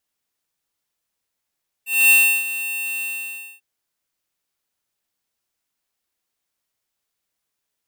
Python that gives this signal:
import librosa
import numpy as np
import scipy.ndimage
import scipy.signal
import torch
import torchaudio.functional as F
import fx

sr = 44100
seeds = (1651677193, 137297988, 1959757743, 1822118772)

y = fx.adsr_tone(sr, wave='square', hz=2700.0, attack_ms=240.0, decay_ms=333.0, sustain_db=-14.5, held_s=1.16, release_ms=583.0, level_db=-11.5)